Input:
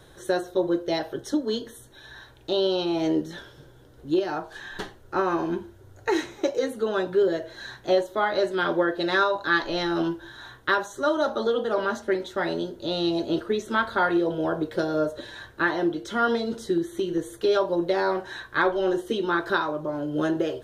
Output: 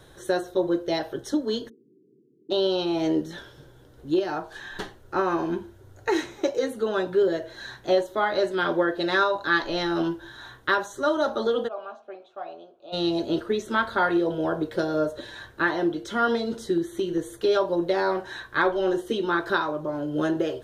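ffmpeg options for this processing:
-filter_complex "[0:a]asplit=3[a][b][c];[a]afade=t=out:st=1.68:d=0.02[d];[b]asuperpass=centerf=250:order=20:qfactor=0.84,afade=t=in:st=1.68:d=0.02,afade=t=out:st=2.5:d=0.02[e];[c]afade=t=in:st=2.5:d=0.02[f];[d][e][f]amix=inputs=3:normalize=0,asplit=3[g][h][i];[g]afade=t=out:st=11.67:d=0.02[j];[h]asplit=3[k][l][m];[k]bandpass=f=730:t=q:w=8,volume=0dB[n];[l]bandpass=f=1.09k:t=q:w=8,volume=-6dB[o];[m]bandpass=f=2.44k:t=q:w=8,volume=-9dB[p];[n][o][p]amix=inputs=3:normalize=0,afade=t=in:st=11.67:d=0.02,afade=t=out:st=12.92:d=0.02[q];[i]afade=t=in:st=12.92:d=0.02[r];[j][q][r]amix=inputs=3:normalize=0"

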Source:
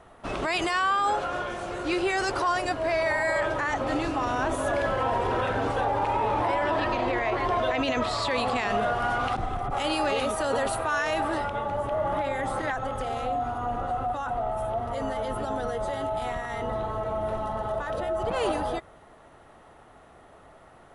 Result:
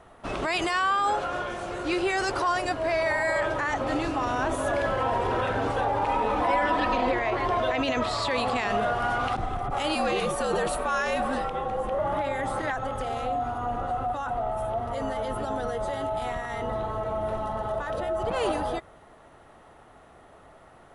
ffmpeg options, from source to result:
-filter_complex "[0:a]asettb=1/sr,asplit=3[a][b][c];[a]atrim=end=6.074[d];[b]atrim=start=6.07:end=7.13,asetpts=PTS-STARTPTS,afade=t=in:d=0.004:c=qsin,afade=t=out:st=1.056:d=0.004:c=qsin,aecho=1:1:4:0.65,atrim=end_sample=46746[e];[c]atrim=start=7.126[f];[d][e]acrossfade=d=0.004:c1=hsin:c2=qsin[g];[g][f]acrossfade=d=0.004:c1=qsin:c2=hsin,asettb=1/sr,asplit=3[h][i][j];[h]atrim=end=9.954[k];[i]atrim=start=9.95:end=11.99,asetpts=PTS-STARTPTS,afade=t=in:d=0.004:c=qsin,afade=t=out:st=2.036:d=0.004:c=qsin,afreqshift=-69[l];[j]atrim=start=11.986[m];[k][l]acrossfade=d=0.004:c1=hsin:c2=qsin[n];[n][m]acrossfade=d=0.004:c1=qsin:c2=hsin"

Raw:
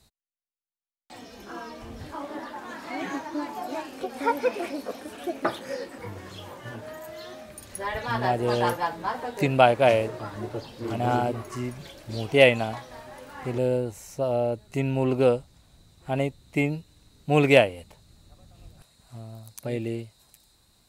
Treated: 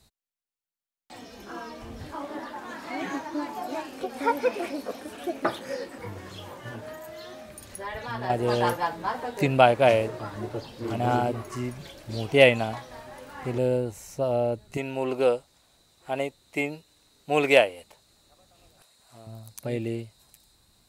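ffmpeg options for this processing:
-filter_complex "[0:a]asettb=1/sr,asplit=3[a][b][c];[a]atrim=end=6.954[d];[b]atrim=start=6.95:end=8.3,asetpts=PTS-STARTPTS,afade=t=in:d=0.004:c=qsin,afade=t=out:st=1.346:d=0.004:c=qsin,acompressor=threshold=-39dB:ratio=1.5:attack=3.2:release=140:knee=1:detection=peak[e];[c]atrim=start=8.296[f];[d][e]acrossfade=d=0.004:c1=hsin:c2=qsin[g];[g][f]acrossfade=d=0.004:c1=qsin:c2=hsin,asettb=1/sr,asplit=3[h][i][j];[h]atrim=end=14.774[k];[i]atrim=start=14.77:end=19.27,asetpts=PTS-STARTPTS,afade=t=in:d=0.004:c=qsin,afade=t=out:st=4.496:d=0.004:c=qsin,bass=f=250:g=-15,treble=f=4k:g=1[l];[j]atrim=start=19.266[m];[k][l]acrossfade=d=0.004:c1=hsin:c2=qsin[n];[n][m]acrossfade=d=0.004:c1=qsin:c2=hsin"

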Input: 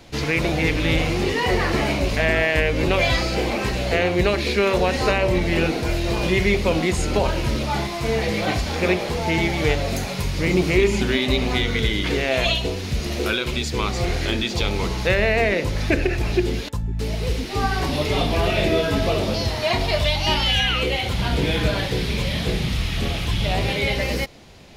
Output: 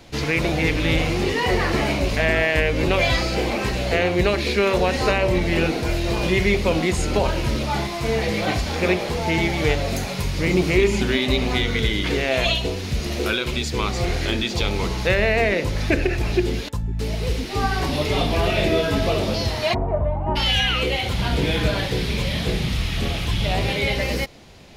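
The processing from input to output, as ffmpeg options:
-filter_complex "[0:a]asplit=3[a][b][c];[a]afade=t=out:st=19.73:d=0.02[d];[b]lowpass=f=1.1k:w=0.5412,lowpass=f=1.1k:w=1.3066,afade=t=in:st=19.73:d=0.02,afade=t=out:st=20.35:d=0.02[e];[c]afade=t=in:st=20.35:d=0.02[f];[d][e][f]amix=inputs=3:normalize=0"

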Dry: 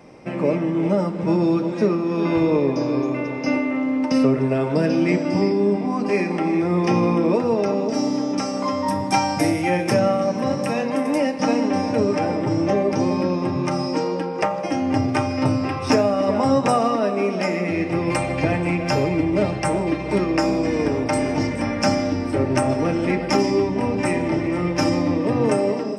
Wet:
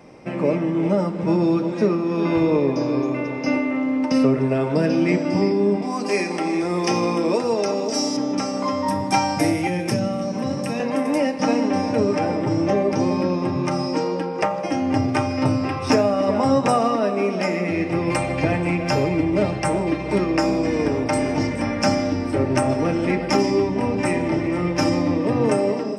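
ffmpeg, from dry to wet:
-filter_complex "[0:a]asettb=1/sr,asplit=3[a][b][c];[a]atrim=end=5.824[d];[b]atrim=start=5.82:end=8.17,asetpts=PTS-STARTPTS,afade=t=in:d=0.004:c=qsin,afade=t=out:st=2.346:d=0.004:c=qsin,bass=f=250:g=-8,treble=f=4k:g=12[e];[c]atrim=start=8.166[f];[d][e]acrossfade=d=0.004:c1=hsin:c2=qsin[g];[g][f]acrossfade=d=0.004:c1=qsin:c2=hsin,asettb=1/sr,asplit=3[h][i][j];[h]atrim=end=9.674[k];[i]atrim=start=9.67:end=10.8,asetpts=PTS-STARTPTS,afade=t=in:d=0.004:c=qsin,afade=t=out:st=1.126:d=0.004:c=qsin,acrossover=split=340|3000[l][m][n];[m]acompressor=threshold=-27dB:ratio=6:attack=3.2:release=140:knee=2.83:detection=peak[o];[l][o][n]amix=inputs=3:normalize=0[p];[j]atrim=start=10.796[q];[k][p]acrossfade=d=0.004:c1=hsin:c2=qsin[r];[r][q]acrossfade=d=0.004:c1=qsin:c2=hsin"

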